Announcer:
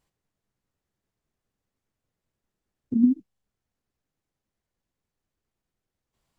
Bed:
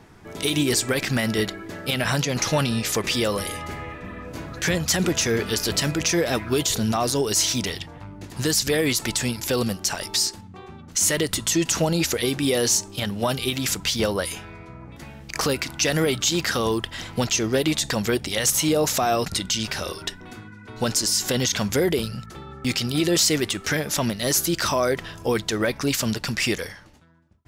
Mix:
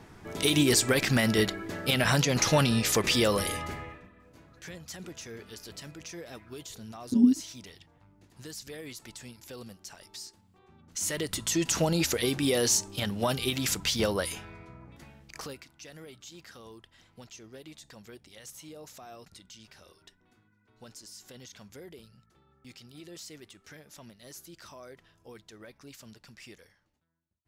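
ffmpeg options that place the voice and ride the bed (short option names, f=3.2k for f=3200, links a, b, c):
-filter_complex "[0:a]adelay=4200,volume=-1dB[a];[1:a]volume=15dB,afade=t=out:st=3.54:d=0.56:silence=0.105925,afade=t=in:st=10.59:d=1.24:silence=0.149624,afade=t=out:st=14.2:d=1.49:silence=0.0841395[b];[a][b]amix=inputs=2:normalize=0"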